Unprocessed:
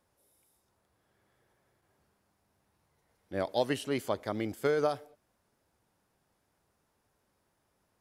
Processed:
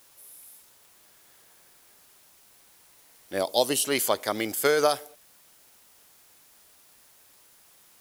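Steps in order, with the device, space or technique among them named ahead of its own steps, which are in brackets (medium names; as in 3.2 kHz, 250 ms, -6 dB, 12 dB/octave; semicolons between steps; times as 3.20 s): turntable without a phono preamp (RIAA curve recording; white noise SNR 28 dB); 3.38–3.85 s: peaking EQ 1.8 kHz -13 dB 0.93 oct; trim +8.5 dB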